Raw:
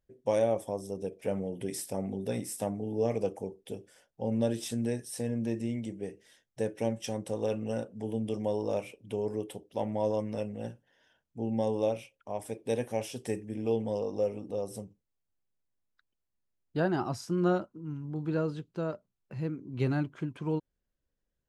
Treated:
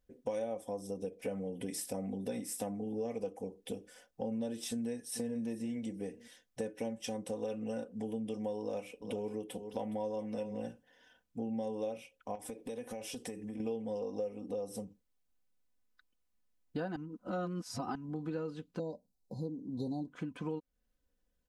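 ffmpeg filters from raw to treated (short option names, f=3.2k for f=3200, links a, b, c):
-filter_complex "[0:a]asplit=2[a][b];[b]afade=t=in:st=4.68:d=0.01,afade=t=out:st=5.39:d=0.01,aecho=0:1:440|880:0.188365|0.0282547[c];[a][c]amix=inputs=2:normalize=0,asettb=1/sr,asplit=3[d][e][f];[d]atrim=end=8.604[g];[e]atrim=start=8.6:end=10.68,asetpts=PTS-STARTPTS,afade=t=in:d=0.004:c=qsin,afade=t=out:st=2.076:d=0.004:c=qsin,aecho=1:1:416:0.188,atrim=end_sample=91728[h];[f]atrim=start=10.676[i];[g][h]acrossfade=d=0.004:c1=hsin:c2=qsin[j];[j][i]acrossfade=d=0.004:c1=qsin:c2=hsin,asettb=1/sr,asplit=3[k][l][m];[k]atrim=end=12.354[n];[l]atrim=start=12.35:end=13.6,asetpts=PTS-STARTPTS,afade=t=in:d=0.004:c=qsin,afade=t=out:st=1.246:d=0.004:c=qsin,acompressor=threshold=-41dB:ratio=6:attack=3.2:release=140:knee=1:detection=peak[o];[m]atrim=start=13.596[p];[n][o]acrossfade=d=0.004:c1=hsin:c2=qsin[q];[q][p]acrossfade=d=0.004:c1=qsin:c2=hsin,asettb=1/sr,asplit=3[r][s][t];[r]atrim=end=18.794[u];[s]atrim=start=18.79:end=20.08,asetpts=PTS-STARTPTS,afade=t=in:d=0.004:c=qsin,afade=t=out:st=1.286:d=0.004:c=qsin,asuperstop=centerf=1900:order=20:qfactor=0.69[v];[t]atrim=start=20.076[w];[u][v]acrossfade=d=0.004:c1=hsin:c2=qsin[x];[x][w]acrossfade=d=0.004:c1=qsin:c2=hsin,asplit=3[y][z][aa];[y]atrim=end=16.962[ab];[z]atrim=start=16.958:end=17.952,asetpts=PTS-STARTPTS,areverse[ac];[aa]atrim=start=17.948[ad];[ab][ac]acrossfade=d=0.004:c1=hsin:c2=hsin[ae];[ae][ad]acrossfade=d=0.004:c1=hsin:c2=hsin,aecho=1:1:4:0.61,acompressor=threshold=-38dB:ratio=4,volume=1.5dB"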